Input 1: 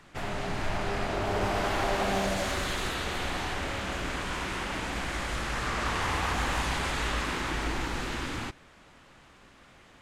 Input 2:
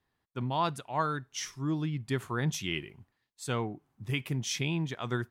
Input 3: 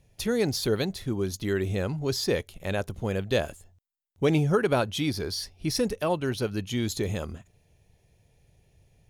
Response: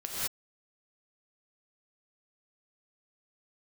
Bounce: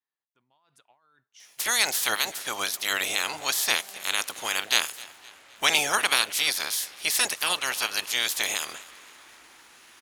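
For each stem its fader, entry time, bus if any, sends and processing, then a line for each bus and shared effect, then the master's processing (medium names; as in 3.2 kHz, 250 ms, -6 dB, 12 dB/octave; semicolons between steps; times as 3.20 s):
-16.5 dB, 1.75 s, no send, no echo send, none
-18.0 dB, 0.00 s, no send, no echo send, treble shelf 4.7 kHz -7 dB; compressor with a negative ratio -40 dBFS, ratio -1
+2.5 dB, 1.40 s, no send, echo send -21 dB, spectral peaks clipped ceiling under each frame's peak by 29 dB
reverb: none
echo: feedback delay 259 ms, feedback 46%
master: high-pass 1.3 kHz 6 dB/octave; peaking EQ 9.7 kHz +3 dB 2.2 oct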